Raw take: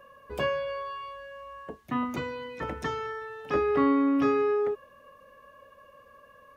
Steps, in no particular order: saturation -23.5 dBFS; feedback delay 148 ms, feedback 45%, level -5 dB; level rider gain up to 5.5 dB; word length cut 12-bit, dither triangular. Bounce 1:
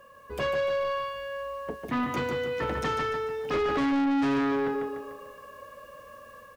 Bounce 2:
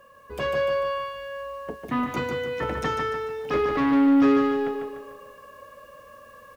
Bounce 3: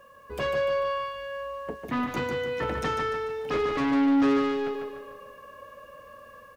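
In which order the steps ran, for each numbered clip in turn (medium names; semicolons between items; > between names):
word length cut > level rider > feedback delay > saturation; saturation > word length cut > feedback delay > level rider; level rider > saturation > feedback delay > word length cut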